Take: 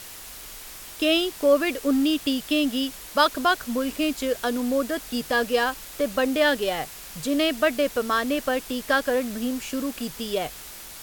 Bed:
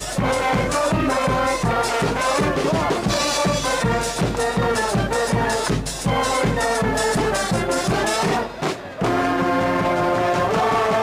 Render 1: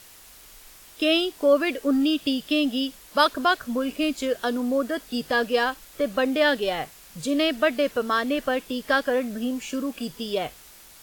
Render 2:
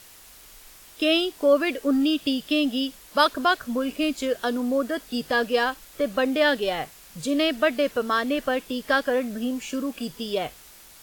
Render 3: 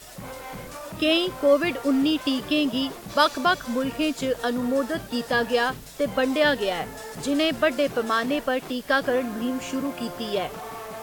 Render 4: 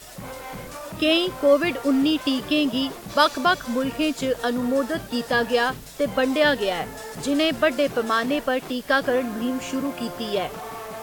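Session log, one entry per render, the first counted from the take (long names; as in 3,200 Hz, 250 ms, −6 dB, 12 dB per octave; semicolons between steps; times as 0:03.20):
noise reduction from a noise print 8 dB
no processing that can be heard
mix in bed −18 dB
level +1.5 dB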